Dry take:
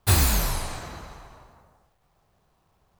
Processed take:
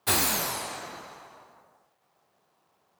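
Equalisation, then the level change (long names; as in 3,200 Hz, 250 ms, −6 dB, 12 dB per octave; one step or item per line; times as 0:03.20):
high-pass filter 260 Hz 12 dB per octave
0.0 dB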